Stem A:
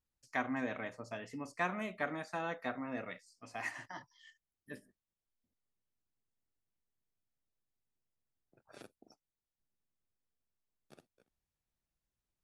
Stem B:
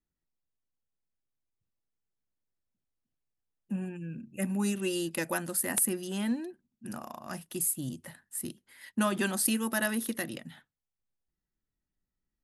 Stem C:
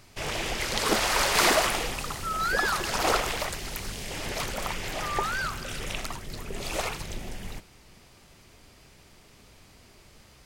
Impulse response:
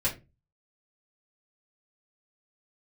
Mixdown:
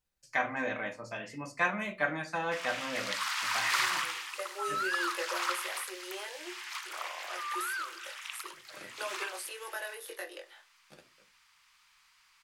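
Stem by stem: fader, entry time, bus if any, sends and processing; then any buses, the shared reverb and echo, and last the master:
+1.0 dB, 0.00 s, send -6.5 dB, tilt EQ +2 dB/octave
+1.0 dB, 0.00 s, send -13.5 dB, steep high-pass 360 Hz 96 dB/octave; compression 3:1, threshold -35 dBFS, peak gain reduction 9.5 dB; chorus 0.34 Hz, delay 18.5 ms, depth 3.7 ms
-4.5 dB, 2.35 s, no send, steep high-pass 980 Hz 48 dB/octave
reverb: on, RT60 0.25 s, pre-delay 3 ms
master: treble shelf 5.7 kHz -8 dB

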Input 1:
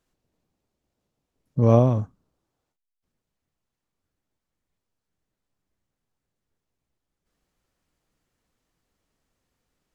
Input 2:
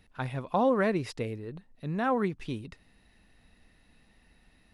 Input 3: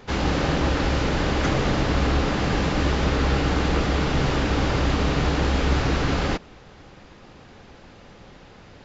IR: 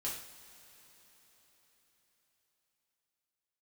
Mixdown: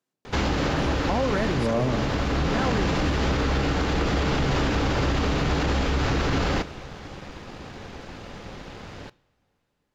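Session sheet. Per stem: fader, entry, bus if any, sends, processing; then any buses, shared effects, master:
-6.0 dB, 0.00 s, send -9 dB, high-pass 130 Hz 24 dB/octave
-1.5 dB, 0.55 s, no send, none
+3.0 dB, 0.25 s, send -13.5 dB, compression, threshold -24 dBFS, peak gain reduction 8.5 dB; auto duck -6 dB, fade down 1.80 s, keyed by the first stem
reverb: on, pre-delay 3 ms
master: waveshaping leveller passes 1; peak limiter -16 dBFS, peak gain reduction 6.5 dB

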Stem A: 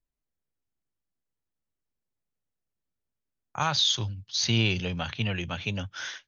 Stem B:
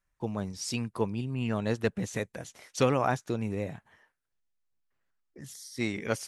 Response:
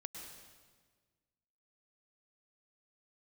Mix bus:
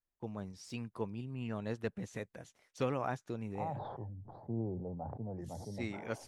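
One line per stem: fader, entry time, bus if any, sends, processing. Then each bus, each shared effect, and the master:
-5.5 dB, 0.00 s, no send, elliptic low-pass 810 Hz, stop band 70 dB; bass shelf 240 Hz -10 dB; decay stretcher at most 30 dB/s
-9.0 dB, 0.00 s, no send, gate -49 dBFS, range -7 dB; de-esser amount 80%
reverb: none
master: treble shelf 3.9 kHz -6 dB

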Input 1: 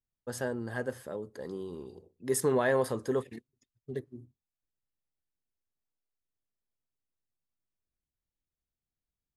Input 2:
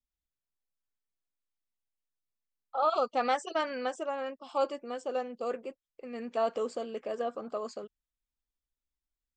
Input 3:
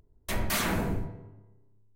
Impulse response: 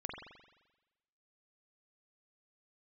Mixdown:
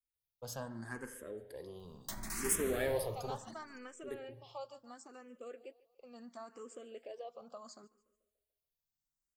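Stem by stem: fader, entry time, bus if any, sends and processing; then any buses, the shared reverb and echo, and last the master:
-8.0 dB, 0.15 s, no bus, send -4.5 dB, no echo send, single-diode clipper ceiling -32 dBFS
-8.5 dB, 0.00 s, bus A, no send, echo send -22.5 dB, none
-1.0 dB, 1.80 s, bus A, no send, echo send -11 dB, peak limiter -24 dBFS, peak gain reduction 7 dB
bus A: 0.0 dB, compression 2.5:1, threshold -44 dBFS, peak gain reduction 10.5 dB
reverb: on, RT60 1.1 s, pre-delay 43 ms
echo: feedback delay 145 ms, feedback 47%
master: treble shelf 5.2 kHz +11.5 dB; barber-pole phaser +0.72 Hz

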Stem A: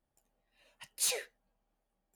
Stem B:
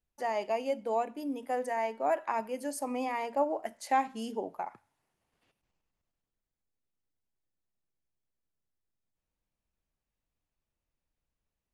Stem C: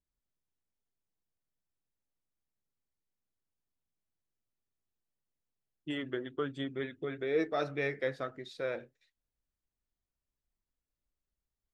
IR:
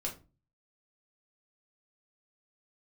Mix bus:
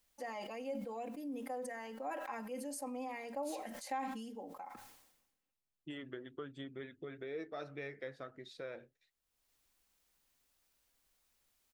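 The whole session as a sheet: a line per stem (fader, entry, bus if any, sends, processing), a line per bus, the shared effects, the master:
-10.5 dB, 2.45 s, no send, none
-5.5 dB, 0.00 s, no send, comb 3.8 ms, depth 86%; word length cut 12-bit, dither triangular; decay stretcher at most 47 dB/s; auto duck -23 dB, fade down 1.80 s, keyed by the third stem
-4.5 dB, 0.00 s, no send, none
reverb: none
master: compression 2:1, threshold -46 dBFS, peak gain reduction 13 dB

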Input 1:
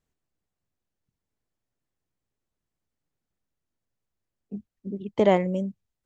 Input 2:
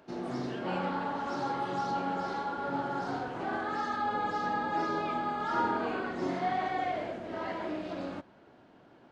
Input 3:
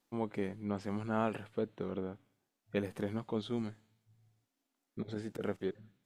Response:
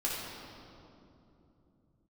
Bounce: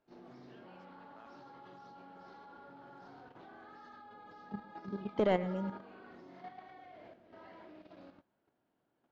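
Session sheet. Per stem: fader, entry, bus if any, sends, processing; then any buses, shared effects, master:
-4.5 dB, 0.00 s, no send, echo send -15.5 dB, saturation -11.5 dBFS, distortion -16 dB
-15.5 dB, 0.00 s, no send, no echo send, none
-13.5 dB, 0.00 s, no send, no echo send, high-pass 800 Hz; level held to a coarse grid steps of 19 dB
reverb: none
echo: feedback delay 118 ms, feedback 40%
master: low-pass 5.9 kHz 24 dB/octave; level held to a coarse grid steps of 9 dB

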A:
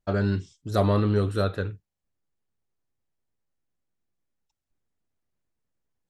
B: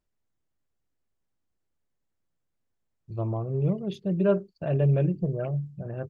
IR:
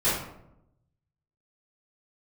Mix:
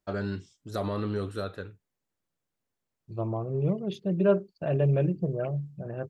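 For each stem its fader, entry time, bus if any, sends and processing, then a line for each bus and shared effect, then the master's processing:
-5.0 dB, 0.00 s, no send, peak limiter -13.5 dBFS, peak gain reduction 4.5 dB; auto duck -14 dB, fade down 1.85 s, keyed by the second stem
+1.0 dB, 0.00 s, no send, none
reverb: none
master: bass shelf 92 Hz -11 dB

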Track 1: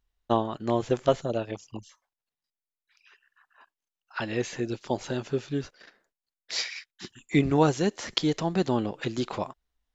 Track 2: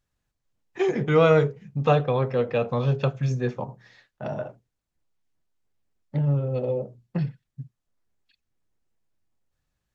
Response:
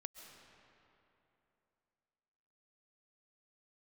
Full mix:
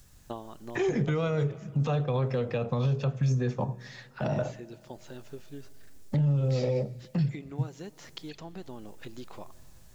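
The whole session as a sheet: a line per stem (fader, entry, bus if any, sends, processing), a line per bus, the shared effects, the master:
-6.5 dB, 0.00 s, send -15.5 dB, compression, threshold -25 dBFS, peak gain reduction 9.5 dB; auto duck -8 dB, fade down 0.80 s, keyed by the second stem
-4.5 dB, 0.00 s, send -14 dB, tone controls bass +6 dB, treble +11 dB; three bands compressed up and down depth 70%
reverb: on, RT60 3.0 s, pre-delay 95 ms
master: peak limiter -19.5 dBFS, peak gain reduction 8.5 dB

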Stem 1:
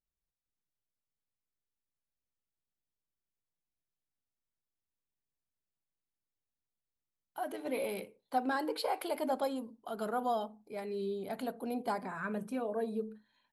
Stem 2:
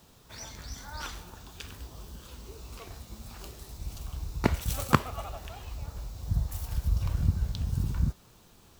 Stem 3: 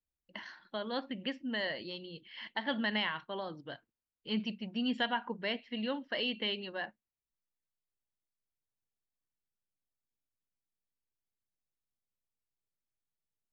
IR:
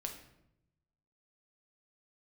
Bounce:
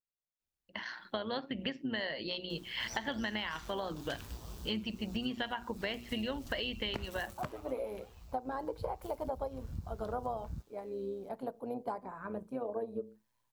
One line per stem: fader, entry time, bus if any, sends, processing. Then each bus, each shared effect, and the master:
-6.0 dB, 0.00 s, no send, graphic EQ 125/250/500/1000 Hz +11/+5/+11/+11 dB; upward expansion 1.5:1, over -38 dBFS
+0.5 dB, 2.50 s, no send, auto duck -13 dB, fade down 0.35 s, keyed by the first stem
+1.0 dB, 0.40 s, no send, hum notches 60/120/180/240/300/360 Hz; level rider gain up to 11 dB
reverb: none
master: AM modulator 120 Hz, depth 30%; compression 12:1, threshold -33 dBFS, peak gain reduction 16.5 dB

